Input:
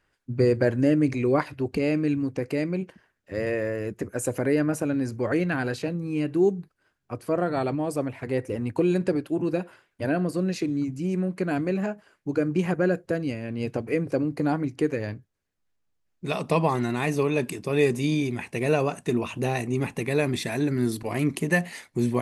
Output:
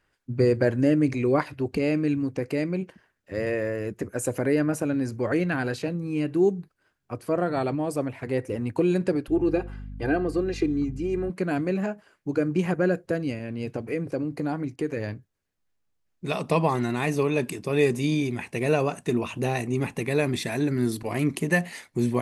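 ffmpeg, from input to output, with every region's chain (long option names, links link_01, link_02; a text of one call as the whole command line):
ffmpeg -i in.wav -filter_complex "[0:a]asettb=1/sr,asplit=3[link_01][link_02][link_03];[link_01]atrim=end=9.284[link_04];[link_02]atrim=start=9.28:end=11.3,asetpts=PTS-STARTPTS,afade=type=in:duration=0.004:curve=qsin,afade=type=out:start_time=2.016:duration=0.004:curve=qsin,lowpass=frequency=3300:poles=1,aecho=1:1:2.5:0.79,atrim=end_sample=89082,aeval=exprs='val(0)+0.0158*(sin(2*PI*50*n/s)+sin(2*PI*2*50*n/s)/2+sin(2*PI*3*50*n/s)/3+sin(2*PI*4*50*n/s)/4+sin(2*PI*5*50*n/s)/5)':channel_layout=same[link_05];[link_03]atrim=start=11.296[link_06];[link_04][link_05]acrossfade=duration=0.004:curve1=hsin:curve2=qsin[link_07];[link_07][link_06]acrossfade=duration=0.004:curve1=qsin:curve2=hsin,asettb=1/sr,asplit=3[link_08][link_09][link_10];[link_08]atrim=end=13.394[link_11];[link_09]atrim=start=13.39:end=14.97,asetpts=PTS-STARTPTS,afade=type=in:duration=0.004:curve=qsin,afade=type=out:start_time=1.576:duration=0.004:curve=qsin,agate=range=-33dB:threshold=-40dB:ratio=3:release=100:detection=peak,acompressor=threshold=-29dB:ratio=1.5:attack=3.2:release=140:knee=1:detection=peak[link_12];[link_10]atrim=start=14.966[link_13];[link_11][link_12]acrossfade=duration=0.004:curve1=hsin:curve2=qsin[link_14];[link_14][link_13]acrossfade=duration=0.004:curve1=qsin:curve2=hsin" out.wav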